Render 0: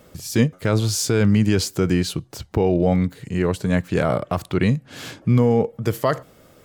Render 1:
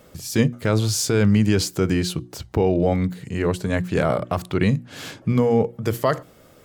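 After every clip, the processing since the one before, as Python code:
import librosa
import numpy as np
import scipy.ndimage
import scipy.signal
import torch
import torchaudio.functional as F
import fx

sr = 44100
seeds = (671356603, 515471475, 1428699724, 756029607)

y = fx.hum_notches(x, sr, base_hz=60, count=6)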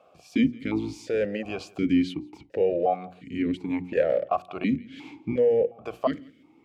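y = fx.octave_divider(x, sr, octaves=1, level_db=-4.0)
y = y + 10.0 ** (-23.0 / 20.0) * np.pad(y, (int(170 * sr / 1000.0), 0))[:len(y)]
y = fx.vowel_held(y, sr, hz=2.8)
y = y * 10.0 ** (5.5 / 20.0)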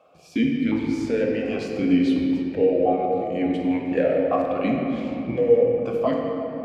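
y = fx.room_shoebox(x, sr, seeds[0], volume_m3=200.0, walls='hard', distance_m=0.53)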